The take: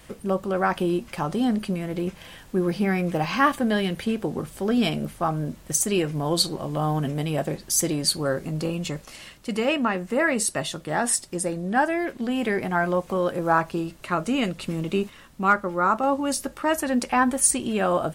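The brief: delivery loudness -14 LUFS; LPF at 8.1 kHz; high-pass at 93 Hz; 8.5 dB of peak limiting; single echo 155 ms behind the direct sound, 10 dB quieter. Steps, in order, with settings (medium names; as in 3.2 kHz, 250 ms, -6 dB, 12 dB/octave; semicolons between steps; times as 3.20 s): high-pass 93 Hz; low-pass 8.1 kHz; peak limiter -16 dBFS; delay 155 ms -10 dB; trim +12.5 dB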